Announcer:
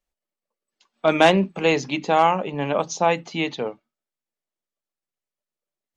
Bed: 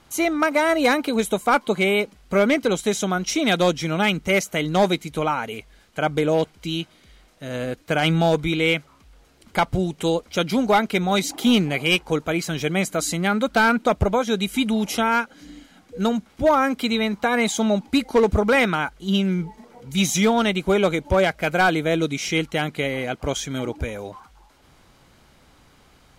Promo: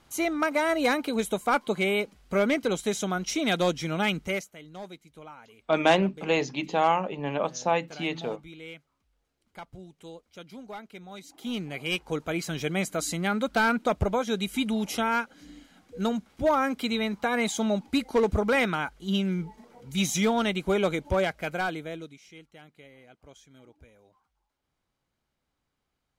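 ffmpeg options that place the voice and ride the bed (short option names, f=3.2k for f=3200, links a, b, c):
-filter_complex "[0:a]adelay=4650,volume=-5.5dB[a];[1:a]volume=11dB,afade=t=out:st=4.19:d=0.33:silence=0.141254,afade=t=in:st=11.25:d=1.19:silence=0.141254,afade=t=out:st=21.07:d=1.13:silence=0.0891251[b];[a][b]amix=inputs=2:normalize=0"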